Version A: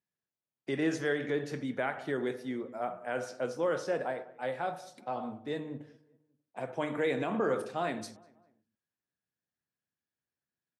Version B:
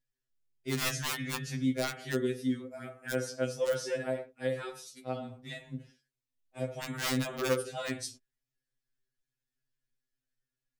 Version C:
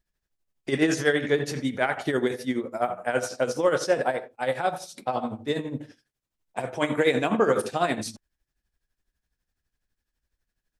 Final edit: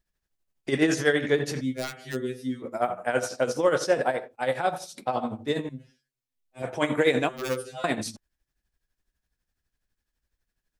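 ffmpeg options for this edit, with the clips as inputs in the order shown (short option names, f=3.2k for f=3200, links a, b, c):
-filter_complex "[1:a]asplit=3[a][b][c];[2:a]asplit=4[d][e][f][g];[d]atrim=end=1.612[h];[a]atrim=start=1.608:end=2.622[i];[e]atrim=start=2.618:end=5.692[j];[b]atrim=start=5.688:end=6.622[k];[f]atrim=start=6.618:end=7.292[l];[c]atrim=start=7.288:end=7.842[m];[g]atrim=start=7.838[n];[h][i]acrossfade=d=0.004:c1=hsin:c2=hsin[o];[o][j]acrossfade=d=0.004:c1=hsin:c2=hsin[p];[p][k]acrossfade=d=0.004:c1=hsin:c2=hsin[q];[q][l]acrossfade=d=0.004:c1=hsin:c2=hsin[r];[r][m]acrossfade=d=0.004:c1=hsin:c2=hsin[s];[s][n]acrossfade=d=0.004:c1=hsin:c2=hsin"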